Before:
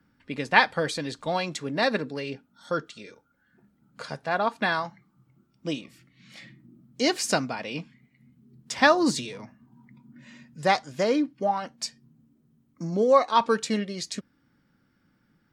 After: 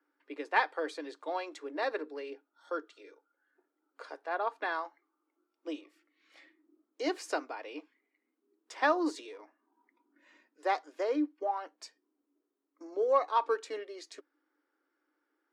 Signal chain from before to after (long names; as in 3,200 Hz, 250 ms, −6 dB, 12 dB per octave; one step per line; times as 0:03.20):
Chebyshev high-pass with heavy ripple 290 Hz, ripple 3 dB
high-shelf EQ 2,300 Hz −10.5 dB
in parallel at −8 dB: soft clipping −14 dBFS, distortion −19 dB
on the sum: level −7.5 dB